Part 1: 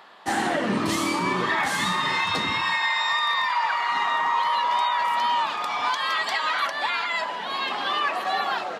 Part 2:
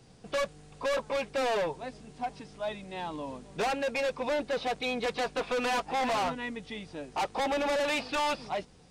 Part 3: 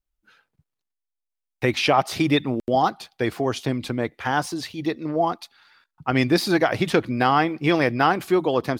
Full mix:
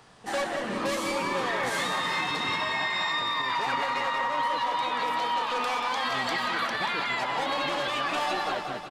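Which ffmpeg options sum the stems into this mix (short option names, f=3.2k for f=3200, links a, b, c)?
-filter_complex "[0:a]dynaudnorm=f=470:g=5:m=11dB,volume=-8dB,asplit=2[a][b];[b]volume=-12dB[c];[1:a]volume=2dB,asplit=2[d][e];[e]volume=-9.5dB[f];[2:a]volume=-18dB,asplit=2[g][h];[h]volume=-8.5dB[i];[a][d]amix=inputs=2:normalize=0,lowshelf=f=230:g=-8.5,acompressor=threshold=-25dB:ratio=2,volume=0dB[j];[c][f][i]amix=inputs=3:normalize=0,aecho=0:1:183|366|549|732|915|1098|1281|1464|1647:1|0.58|0.336|0.195|0.113|0.0656|0.0381|0.0221|0.0128[k];[g][j][k]amix=inputs=3:normalize=0,alimiter=limit=-19dB:level=0:latency=1:release=176"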